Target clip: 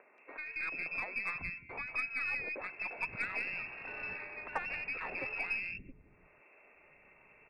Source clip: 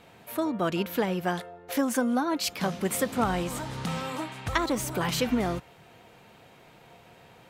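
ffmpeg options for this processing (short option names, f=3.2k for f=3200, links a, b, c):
-filter_complex "[0:a]lowpass=f=2.4k:t=q:w=0.5098,lowpass=f=2.4k:t=q:w=0.6013,lowpass=f=2.4k:t=q:w=0.9,lowpass=f=2.4k:t=q:w=2.563,afreqshift=-2800,agate=range=-22dB:threshold=-46dB:ratio=16:detection=peak,acompressor=mode=upward:threshold=-32dB:ratio=2.5,acrossover=split=260|2100[a][b][c];[c]adelay=180[d];[a]adelay=670[e];[e][b][d]amix=inputs=3:normalize=0,aeval=exprs='0.237*(cos(1*acos(clip(val(0)/0.237,-1,1)))-cos(1*PI/2))+0.00376*(cos(6*acos(clip(val(0)/0.237,-1,1)))-cos(6*PI/2))':c=same,equalizer=f=1.7k:w=0.47:g=-12.5,volume=2.5dB"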